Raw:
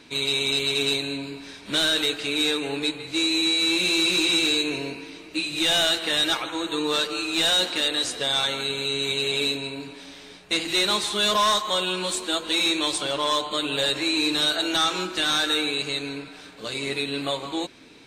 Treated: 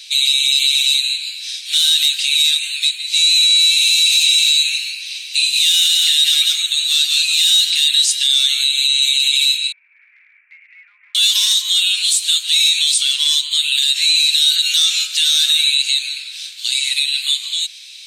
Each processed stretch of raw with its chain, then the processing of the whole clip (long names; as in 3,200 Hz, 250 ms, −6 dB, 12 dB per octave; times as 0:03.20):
0:04.92–0:07.47: high-pass filter 730 Hz 6 dB per octave + single-tap delay 182 ms −5 dB
0:09.72–0:11.15: Butterworth low-pass 2,300 Hz 96 dB per octave + downward compressor 4 to 1, threshold −44 dBFS
whole clip: dynamic equaliser 4,200 Hz, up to −3 dB, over −36 dBFS, Q 0.8; inverse Chebyshev high-pass filter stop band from 530 Hz, stop band 80 dB; boost into a limiter +23.5 dB; level −4 dB